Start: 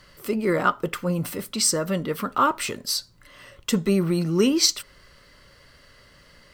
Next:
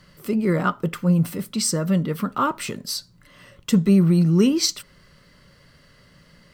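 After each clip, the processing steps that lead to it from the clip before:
parametric band 170 Hz +11 dB 1.1 octaves
level −2.5 dB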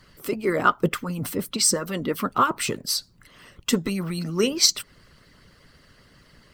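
harmonic and percussive parts rebalanced harmonic −18 dB
level +5 dB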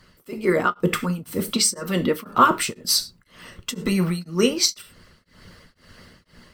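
automatic gain control gain up to 7 dB
reverb whose tail is shaped and stops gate 130 ms falling, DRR 8 dB
tremolo along a rectified sine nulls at 2 Hz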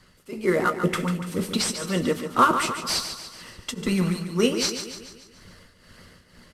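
variable-slope delta modulation 64 kbit/s
on a send: repeating echo 144 ms, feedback 52%, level −9 dB
on the sum: level −2 dB

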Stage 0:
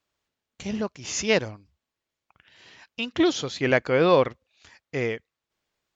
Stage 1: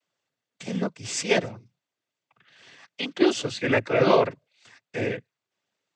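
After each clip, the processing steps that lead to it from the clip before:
cochlear-implant simulation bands 16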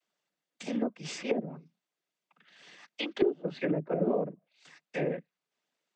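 frequency shifter +44 Hz
treble cut that deepens with the level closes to 360 Hz, closed at −20 dBFS
level −3 dB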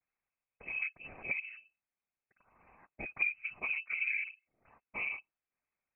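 voice inversion scrambler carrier 2,800 Hz
level −6.5 dB

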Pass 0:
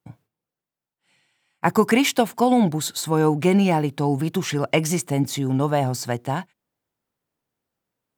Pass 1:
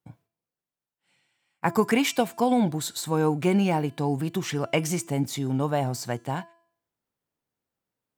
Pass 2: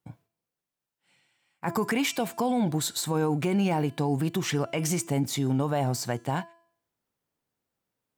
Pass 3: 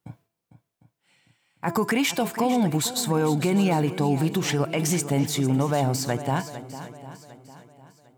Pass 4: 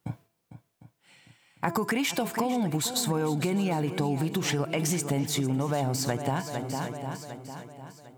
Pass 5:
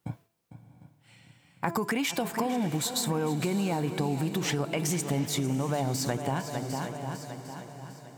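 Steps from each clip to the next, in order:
hum removal 336.4 Hz, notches 32; level −4.5 dB
brickwall limiter −20 dBFS, peak gain reduction 11 dB; level +2 dB
feedback echo with a long and a short gap by turns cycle 753 ms, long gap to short 1.5 to 1, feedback 33%, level −13 dB; level +3.5 dB
downward compressor 6 to 1, threshold −31 dBFS, peak gain reduction 12.5 dB; level +6 dB
feedback delay with all-pass diffusion 660 ms, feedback 52%, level −15 dB; level −1.5 dB

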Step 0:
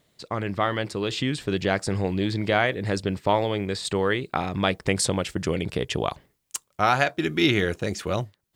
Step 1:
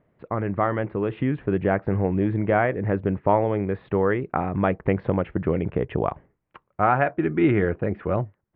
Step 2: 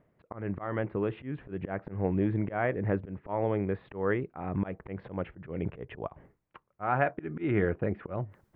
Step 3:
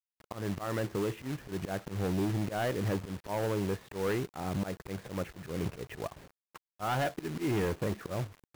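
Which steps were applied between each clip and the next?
Bessel low-pass filter 1,300 Hz, order 8; level +3 dB
volume swells 182 ms; reversed playback; upward compression, threshold −41 dBFS; reversed playback; level −5 dB
log-companded quantiser 4 bits; hard clipping −26.5 dBFS, distortion −10 dB

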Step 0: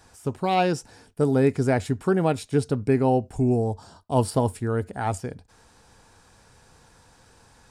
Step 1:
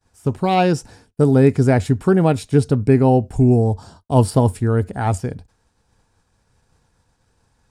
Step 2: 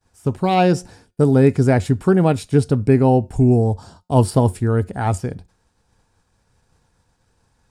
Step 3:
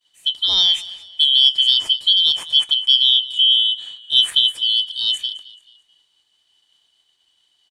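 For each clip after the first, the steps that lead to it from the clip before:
downward expander −44 dBFS; low-shelf EQ 230 Hz +7.5 dB; level +4 dB
tuned comb filter 180 Hz, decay 0.34 s, harmonics all, mix 30%; level +2.5 dB
band-splitting scrambler in four parts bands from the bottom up 3412; echo with shifted repeats 217 ms, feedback 38%, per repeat −42 Hz, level −18.5 dB; level −1 dB

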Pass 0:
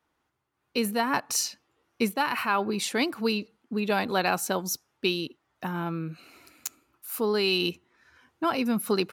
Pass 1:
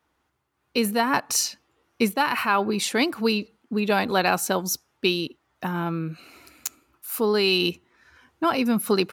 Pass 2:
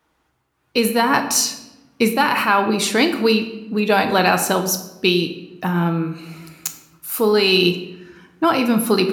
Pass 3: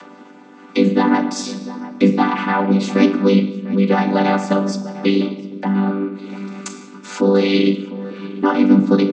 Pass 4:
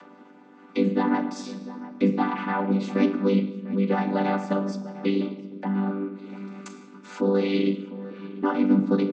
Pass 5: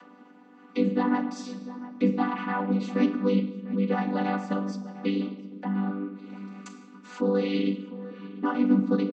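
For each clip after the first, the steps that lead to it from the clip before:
parametric band 67 Hz +9 dB 0.23 octaves; level +4 dB
rectangular room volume 390 cubic metres, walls mixed, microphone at 0.6 metres; level +5 dB
channel vocoder with a chord as carrier major triad, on G3; upward compression, threshold −22 dBFS; slap from a distant wall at 120 metres, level −15 dB; level +3 dB
high-shelf EQ 4,200 Hz −10.5 dB; level −8 dB
comb filter 4.1 ms; level −5 dB

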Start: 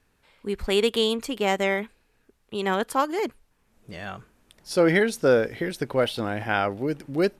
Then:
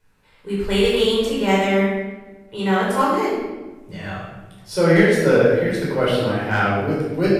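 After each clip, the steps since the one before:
hard clipping −11.5 dBFS, distortion −29 dB
rectangular room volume 740 cubic metres, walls mixed, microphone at 4.8 metres
level −5 dB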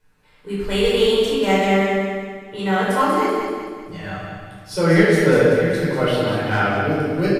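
comb filter 6.7 ms, depth 31%
repeating echo 191 ms, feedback 45%, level −6 dB
level −1 dB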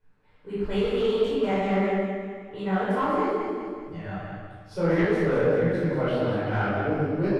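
soft clipping −13 dBFS, distortion −13 dB
low-pass filter 1,300 Hz 6 dB per octave
micro pitch shift up and down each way 55 cents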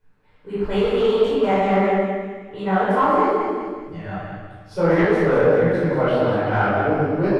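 dynamic equaliser 880 Hz, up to +6 dB, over −38 dBFS, Q 0.77
level +3.5 dB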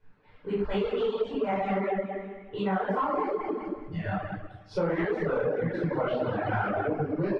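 reverb reduction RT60 1.4 s
low-pass filter 4,400 Hz 12 dB per octave
downward compressor 5 to 1, threshold −28 dBFS, peak gain reduction 14 dB
level +2 dB

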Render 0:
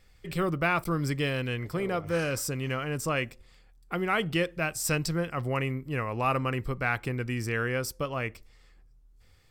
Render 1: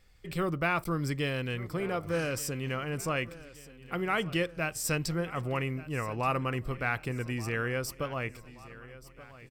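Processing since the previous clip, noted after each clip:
repeating echo 1,178 ms, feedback 51%, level −18 dB
level −2.5 dB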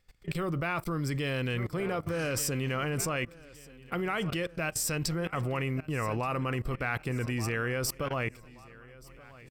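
output level in coarse steps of 20 dB
level +9 dB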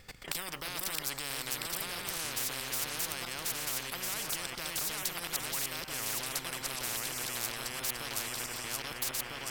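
feedback delay that plays each chunk backwards 651 ms, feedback 42%, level −1 dB
every bin compressed towards the loudest bin 10 to 1

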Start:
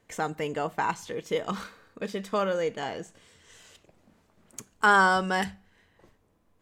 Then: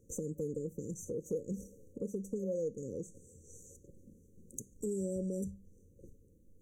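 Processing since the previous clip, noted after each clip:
brick-wall band-stop 560–5,800 Hz
low-shelf EQ 130 Hz +7 dB
downward compressor 2 to 1, threshold −42 dBFS, peak gain reduction 10.5 dB
level +1.5 dB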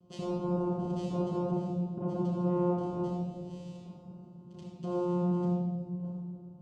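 brickwall limiter −32.5 dBFS, peak gain reduction 10 dB
channel vocoder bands 4, saw 177 Hz
convolution reverb RT60 1.8 s, pre-delay 10 ms, DRR −5.5 dB
level +2.5 dB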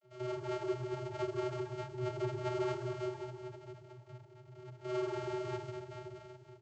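samples sorted by size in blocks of 64 samples
channel vocoder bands 32, square 125 Hz
repeating echo 116 ms, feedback 50%, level −4.5 dB
level −4 dB

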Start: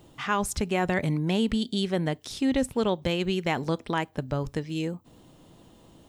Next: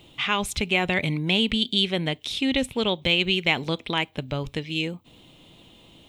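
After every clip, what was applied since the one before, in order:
flat-topped bell 2,900 Hz +12.5 dB 1.1 octaves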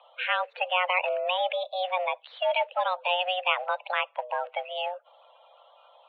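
spectral magnitudes quantised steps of 30 dB
single-sideband voice off tune +360 Hz 160–2,400 Hz

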